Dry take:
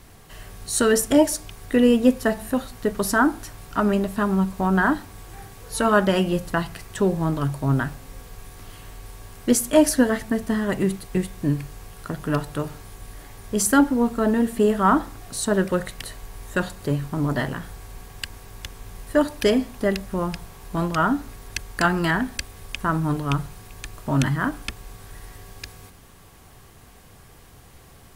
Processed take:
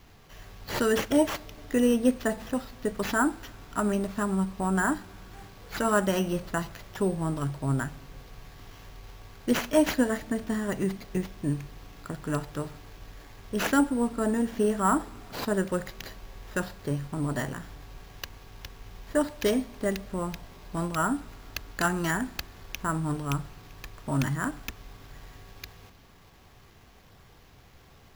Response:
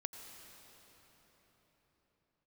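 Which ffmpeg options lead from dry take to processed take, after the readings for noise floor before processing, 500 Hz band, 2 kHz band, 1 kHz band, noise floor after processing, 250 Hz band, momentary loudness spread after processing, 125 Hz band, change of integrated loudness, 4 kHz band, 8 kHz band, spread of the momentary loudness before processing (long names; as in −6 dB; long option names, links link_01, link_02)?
−48 dBFS, −6.0 dB, −6.0 dB, −6.0 dB, −55 dBFS, −6.0 dB, 22 LU, −6.0 dB, −6.0 dB, −6.0 dB, −9.0 dB, 23 LU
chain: -filter_complex "[0:a]acrusher=samples=5:mix=1:aa=0.000001,asplit=2[link_01][link_02];[1:a]atrim=start_sample=2205,asetrate=52920,aresample=44100[link_03];[link_02][link_03]afir=irnorm=-1:irlink=0,volume=-15.5dB[link_04];[link_01][link_04]amix=inputs=2:normalize=0,volume=-7dB"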